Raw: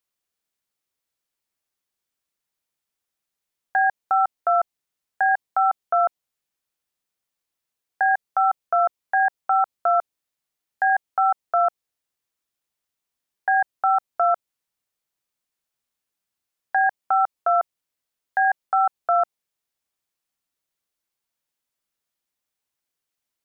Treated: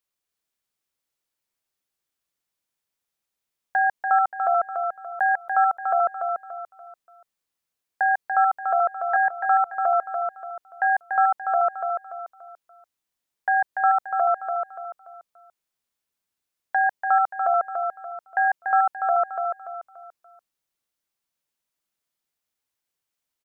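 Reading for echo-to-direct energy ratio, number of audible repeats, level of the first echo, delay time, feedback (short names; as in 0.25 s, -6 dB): -5.0 dB, 4, -5.5 dB, 0.289 s, 36%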